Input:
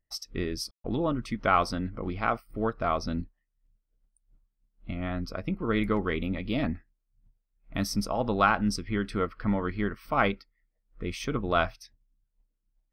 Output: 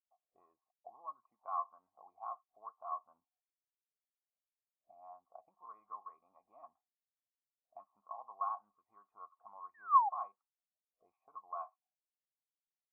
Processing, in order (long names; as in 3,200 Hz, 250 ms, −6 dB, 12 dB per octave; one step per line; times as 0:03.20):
sound drawn into the spectrogram fall, 0:09.74–0:10.09, 770–1,900 Hz −15 dBFS
envelope filter 520–1,100 Hz, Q 5, up, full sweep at −25.5 dBFS
formant resonators in series a